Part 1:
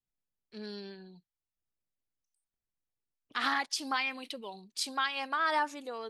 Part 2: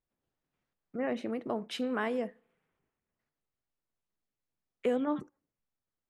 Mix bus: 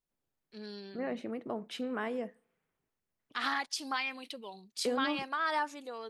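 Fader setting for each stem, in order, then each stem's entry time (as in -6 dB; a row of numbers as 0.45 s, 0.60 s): -2.5 dB, -3.5 dB; 0.00 s, 0.00 s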